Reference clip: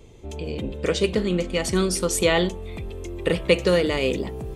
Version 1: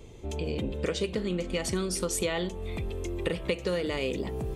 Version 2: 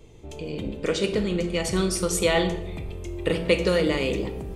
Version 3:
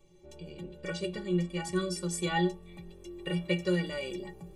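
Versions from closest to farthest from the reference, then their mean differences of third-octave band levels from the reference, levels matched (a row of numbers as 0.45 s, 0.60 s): 2, 1, 3; 2.0 dB, 3.5 dB, 4.5 dB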